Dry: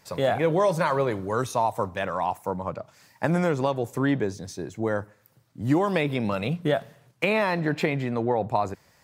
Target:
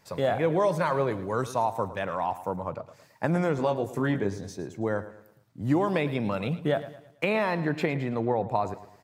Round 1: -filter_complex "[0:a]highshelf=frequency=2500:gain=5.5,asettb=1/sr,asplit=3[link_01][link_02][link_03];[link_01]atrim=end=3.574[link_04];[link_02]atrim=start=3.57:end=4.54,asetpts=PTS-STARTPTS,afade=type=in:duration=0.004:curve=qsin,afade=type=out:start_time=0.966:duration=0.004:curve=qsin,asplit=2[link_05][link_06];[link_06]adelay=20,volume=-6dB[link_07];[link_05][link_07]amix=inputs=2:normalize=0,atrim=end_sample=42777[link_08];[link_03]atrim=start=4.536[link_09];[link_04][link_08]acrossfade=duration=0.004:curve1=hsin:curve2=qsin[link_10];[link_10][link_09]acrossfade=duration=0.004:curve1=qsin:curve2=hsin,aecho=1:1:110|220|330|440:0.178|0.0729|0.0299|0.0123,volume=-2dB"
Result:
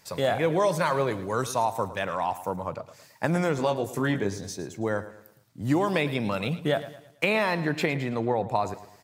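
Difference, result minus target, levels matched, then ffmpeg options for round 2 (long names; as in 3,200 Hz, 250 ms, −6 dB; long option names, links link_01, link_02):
4,000 Hz band +5.5 dB
-filter_complex "[0:a]highshelf=frequency=2500:gain=-4,asettb=1/sr,asplit=3[link_01][link_02][link_03];[link_01]atrim=end=3.574[link_04];[link_02]atrim=start=3.57:end=4.54,asetpts=PTS-STARTPTS,afade=type=in:duration=0.004:curve=qsin,afade=type=out:start_time=0.966:duration=0.004:curve=qsin,asplit=2[link_05][link_06];[link_06]adelay=20,volume=-6dB[link_07];[link_05][link_07]amix=inputs=2:normalize=0,atrim=end_sample=42777[link_08];[link_03]atrim=start=4.536[link_09];[link_04][link_08]acrossfade=duration=0.004:curve1=hsin:curve2=qsin[link_10];[link_10][link_09]acrossfade=duration=0.004:curve1=qsin:curve2=hsin,aecho=1:1:110|220|330|440:0.178|0.0729|0.0299|0.0123,volume=-2dB"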